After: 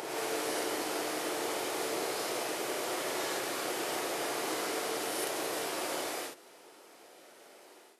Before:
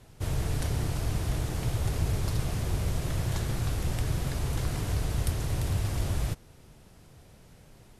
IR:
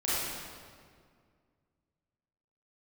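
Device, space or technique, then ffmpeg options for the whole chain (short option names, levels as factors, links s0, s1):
ghost voice: -filter_complex "[0:a]areverse[s0];[1:a]atrim=start_sample=2205[s1];[s0][s1]afir=irnorm=-1:irlink=0,areverse,highpass=f=360:w=0.5412,highpass=f=360:w=1.3066,volume=0.631"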